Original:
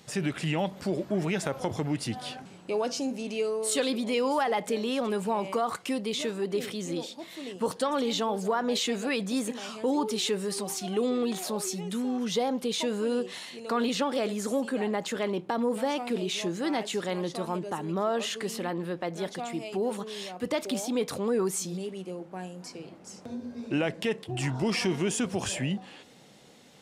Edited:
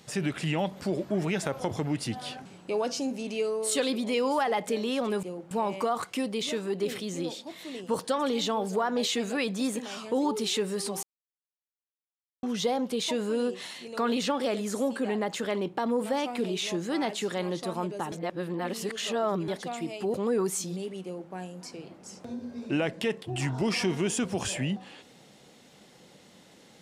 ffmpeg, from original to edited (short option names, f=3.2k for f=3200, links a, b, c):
-filter_complex "[0:a]asplit=8[a][b][c][d][e][f][g][h];[a]atrim=end=5.232[i];[b]atrim=start=22.048:end=22.332[j];[c]atrim=start=5.228:end=10.75,asetpts=PTS-STARTPTS,afade=t=out:st=5.518:d=0.004:c=hsin[k];[d]atrim=start=10.75:end=12.15,asetpts=PTS-STARTPTS,volume=0[l];[e]atrim=start=12.15:end=17.842,asetpts=PTS-STARTPTS,afade=t=in:d=0.004:c=hsin[m];[f]atrim=start=17.838:end=19.202,asetpts=PTS-STARTPTS,areverse[n];[g]atrim=start=19.198:end=19.862[o];[h]atrim=start=21.148[p];[i][j]acrossfade=d=0.004:c1=hsin:c2=hsin[q];[k][l][m]concat=n=3:v=0:a=1[r];[q][r]acrossfade=d=0.004:c1=hsin:c2=hsin[s];[s][n]acrossfade=d=0.004:c1=hsin:c2=hsin[t];[t][o]acrossfade=d=0.004:c1=hsin:c2=hsin[u];[u][p]acrossfade=d=0.004:c1=hsin:c2=hsin"